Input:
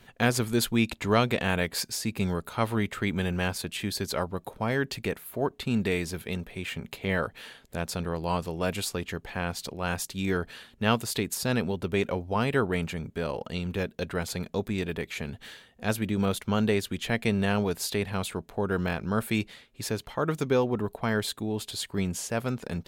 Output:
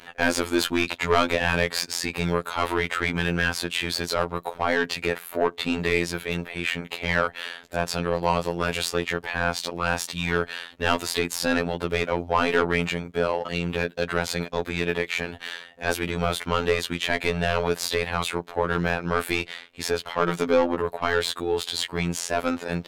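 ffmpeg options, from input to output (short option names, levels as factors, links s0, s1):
-filter_complex "[0:a]asplit=2[s0][s1];[s1]highpass=f=720:p=1,volume=11.2,asoftclip=type=tanh:threshold=0.355[s2];[s0][s2]amix=inputs=2:normalize=0,lowpass=f=2800:p=1,volume=0.501,afftfilt=real='hypot(re,im)*cos(PI*b)':imag='0':win_size=2048:overlap=0.75,volume=1.19"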